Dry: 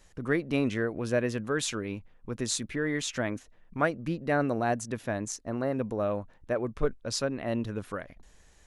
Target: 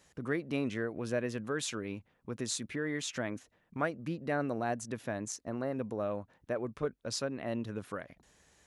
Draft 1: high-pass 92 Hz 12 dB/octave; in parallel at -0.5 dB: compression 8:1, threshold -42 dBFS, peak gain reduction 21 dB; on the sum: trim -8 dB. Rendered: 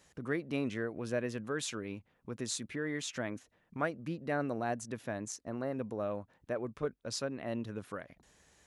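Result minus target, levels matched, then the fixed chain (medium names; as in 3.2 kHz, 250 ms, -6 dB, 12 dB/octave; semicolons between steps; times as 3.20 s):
compression: peak gain reduction +7 dB
high-pass 92 Hz 12 dB/octave; in parallel at -0.5 dB: compression 8:1, threshold -34 dBFS, peak gain reduction 14 dB; on the sum: trim -8 dB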